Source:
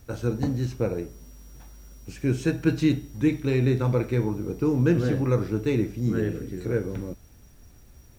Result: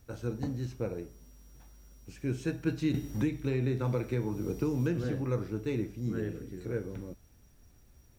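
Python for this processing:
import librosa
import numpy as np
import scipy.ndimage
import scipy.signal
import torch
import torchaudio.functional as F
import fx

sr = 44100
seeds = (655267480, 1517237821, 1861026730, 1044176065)

y = fx.band_squash(x, sr, depth_pct=100, at=(2.94, 5.04))
y = F.gain(torch.from_numpy(y), -8.5).numpy()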